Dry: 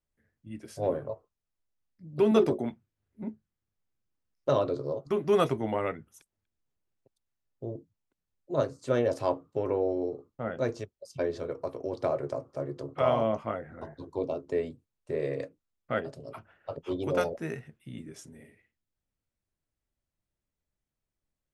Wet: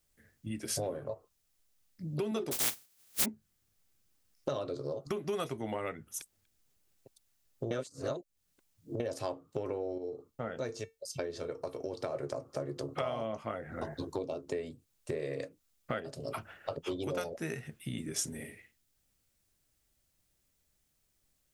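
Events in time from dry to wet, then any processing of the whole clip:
0:02.51–0:03.24: compressing power law on the bin magnitudes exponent 0.16
0:07.71–0:09.00: reverse
0:09.98–0:12.15: tuned comb filter 450 Hz, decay 0.18 s
whole clip: notch filter 980 Hz, Q 19; downward compressor 6 to 1, threshold −42 dBFS; high-shelf EQ 3,100 Hz +11 dB; level +7.5 dB

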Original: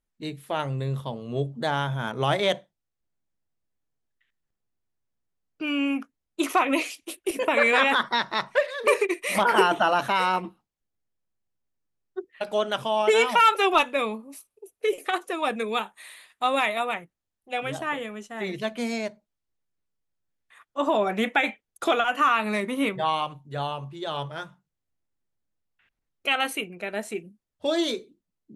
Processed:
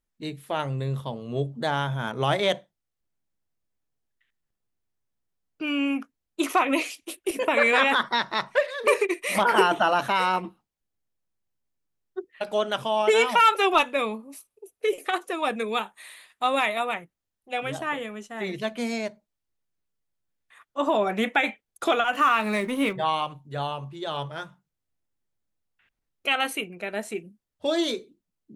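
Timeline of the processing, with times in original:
0:22.13–0:22.93: mu-law and A-law mismatch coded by mu

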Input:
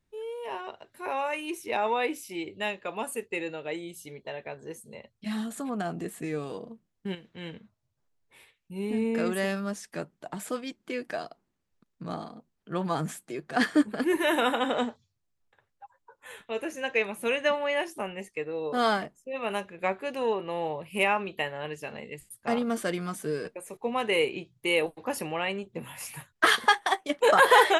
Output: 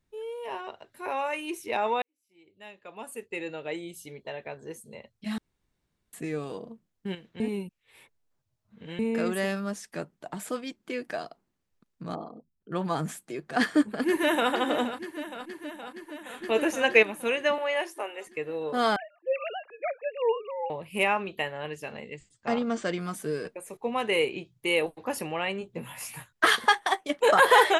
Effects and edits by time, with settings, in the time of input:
0:02.02–0:03.58: fade in quadratic
0:05.38–0:06.13: fill with room tone
0:07.40–0:08.99: reverse
0:12.15–0:12.72: spectral envelope exaggerated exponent 2
0:13.61–0:14.51: delay throw 470 ms, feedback 75%, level −12 dB
0:16.42–0:17.03: clip gain +7.5 dB
0:17.58–0:18.27: inverse Chebyshev high-pass filter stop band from 170 Hz
0:18.96–0:20.70: three sine waves on the formant tracks
0:22.05–0:22.99: Butterworth low-pass 7,900 Hz 72 dB per octave
0:25.59–0:26.33: double-tracking delay 17 ms −7.5 dB

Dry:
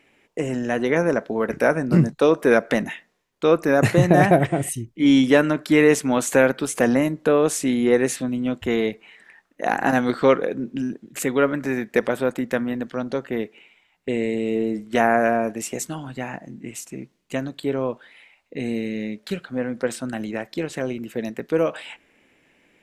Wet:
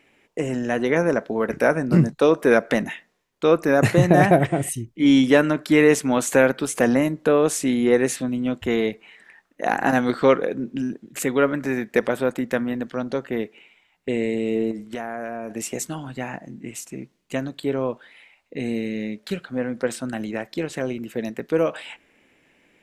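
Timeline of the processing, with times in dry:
0:14.71–0:15.51: downward compressor 4 to 1, threshold −28 dBFS

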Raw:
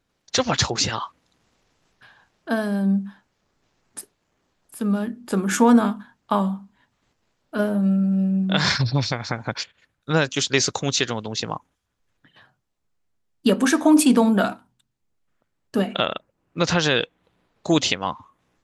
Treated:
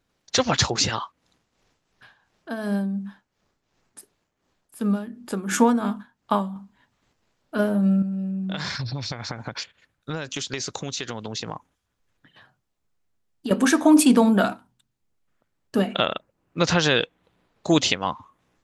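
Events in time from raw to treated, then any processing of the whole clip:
0:00.95–0:06.56: amplitude tremolo 2.8 Hz, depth 65%
0:08.02–0:13.51: downward compressor, threshold −26 dBFS

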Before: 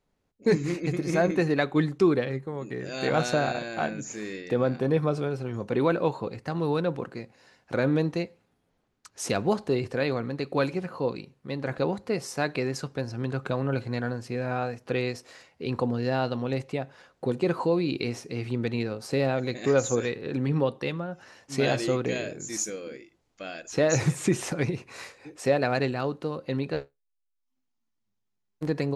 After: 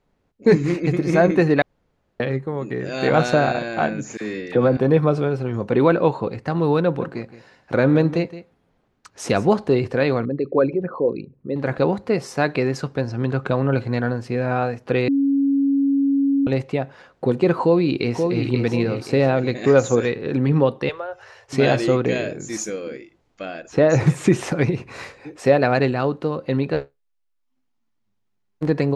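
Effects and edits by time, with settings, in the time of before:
0:01.62–0:02.20: fill with room tone
0:04.17–0:04.77: all-pass dispersion lows, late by 40 ms, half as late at 1,100 Hz
0:06.80–0:09.47: single-tap delay 168 ms −15 dB
0:10.25–0:11.56: spectral envelope exaggerated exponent 2
0:13.04–0:13.51: low-pass filter 9,300 Hz 24 dB per octave
0:15.08–0:16.47: beep over 277 Hz −23 dBFS
0:17.62–0:18.47: delay throw 530 ms, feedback 35%, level −5 dB
0:20.89–0:21.53: Chebyshev band-stop filter 110–410 Hz, order 3
0:23.45–0:24.07: high-shelf EQ 2,400 Hz −7.5 dB
0:24.79–0:25.20: low-shelf EQ 190 Hz +8.5 dB
whole clip: high-shelf EQ 5,000 Hz −12 dB; level +8 dB

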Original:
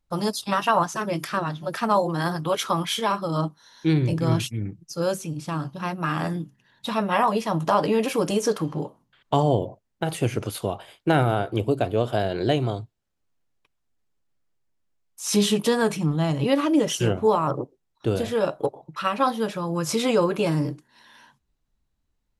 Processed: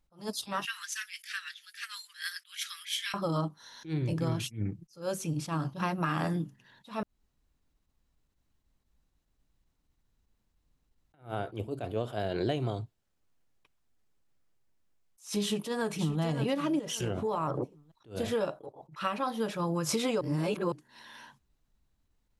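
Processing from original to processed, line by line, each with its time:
0:00.65–0:03.14: Butterworth high-pass 1,700 Hz 48 dB per octave
0:07.03–0:11.14: fill with room tone
0:15.41–0:16.20: delay throw 570 ms, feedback 25%, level −13.5 dB
0:16.79–0:17.62: downward compressor, threshold −27 dBFS
0:20.21–0:20.72: reverse
whole clip: downward compressor 10 to 1, threshold −28 dBFS; level that may rise only so fast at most 200 dB per second; level +1.5 dB

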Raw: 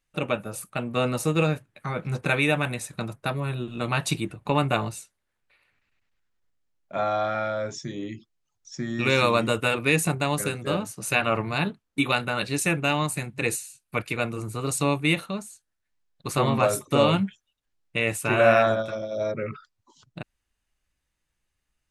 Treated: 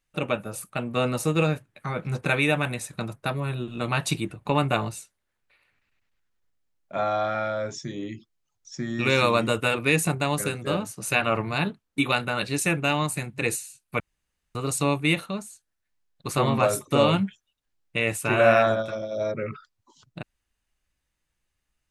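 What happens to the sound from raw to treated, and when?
0:14.00–0:14.55: fill with room tone

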